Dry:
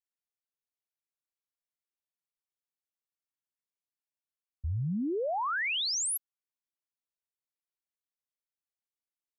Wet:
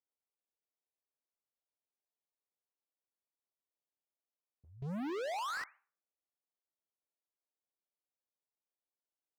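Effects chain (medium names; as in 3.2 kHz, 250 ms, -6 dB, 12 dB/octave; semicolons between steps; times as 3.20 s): Gaussian low-pass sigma 9.4 samples; peak limiter -35 dBFS, peak gain reduction 7 dB; high-pass 400 Hz 12 dB/octave; reverberation RT60 0.45 s, pre-delay 15 ms, DRR 14 dB; compression 12:1, threshold -47 dBFS, peak gain reduction 11 dB; 4.82–5.64 s: waveshaping leveller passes 5; trim +6 dB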